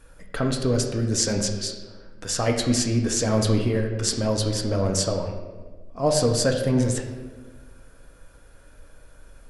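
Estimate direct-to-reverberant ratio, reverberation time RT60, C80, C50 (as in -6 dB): 2.0 dB, 1.4 s, 7.5 dB, 6.0 dB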